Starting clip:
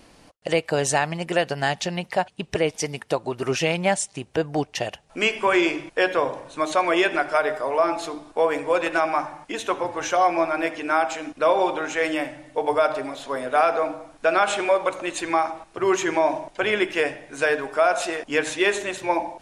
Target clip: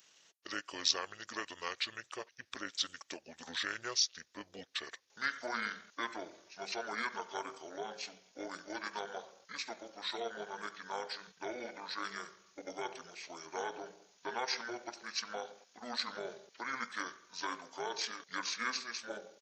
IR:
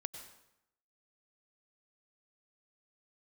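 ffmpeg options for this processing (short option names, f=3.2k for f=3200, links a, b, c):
-af "asetrate=27781,aresample=44100,atempo=1.5874,tremolo=f=250:d=0.571,aderivative,volume=3.5dB"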